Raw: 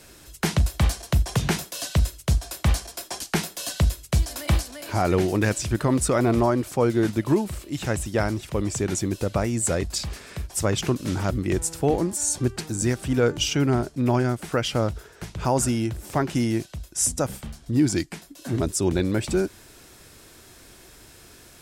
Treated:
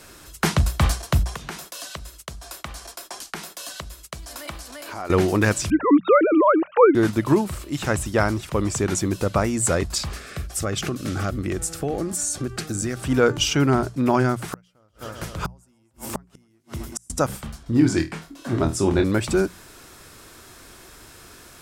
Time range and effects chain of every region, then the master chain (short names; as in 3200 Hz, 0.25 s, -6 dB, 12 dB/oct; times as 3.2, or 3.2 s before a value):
1.23–5.1 expander -42 dBFS + compressor 2.5:1, threshold -37 dBFS + bell 100 Hz -10 dB 1.6 oct
5.7–6.95 sine-wave speech + low shelf 330 Hz +4.5 dB
10.16–13 Butterworth band-stop 950 Hz, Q 3.9 + compressor 5:1, threshold -24 dBFS
14.48–17.1 high shelf 9500 Hz +8.5 dB + multi-head echo 0.129 s, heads first and second, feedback 59%, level -19.5 dB + flipped gate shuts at -18 dBFS, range -40 dB
17.63–19.04 LPF 3800 Hz 6 dB/oct + flutter echo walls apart 4.3 m, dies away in 0.24 s
whole clip: bell 1200 Hz +6 dB 0.75 oct; notches 60/120/180 Hz; gain +2.5 dB